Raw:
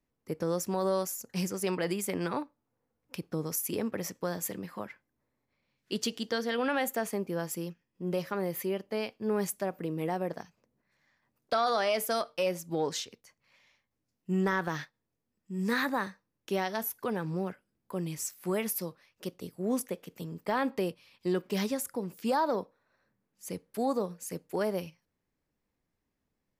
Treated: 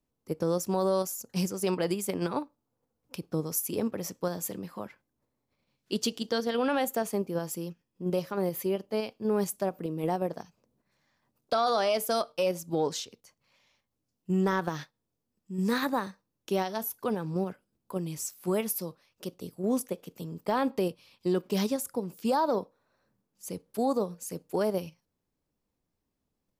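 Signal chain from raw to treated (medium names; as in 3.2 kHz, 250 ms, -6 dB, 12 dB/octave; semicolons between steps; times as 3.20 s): peaking EQ 1.9 kHz -7.5 dB 0.8 oct; in parallel at -2 dB: level held to a coarse grid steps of 16 dB; on the sum: trim -1 dB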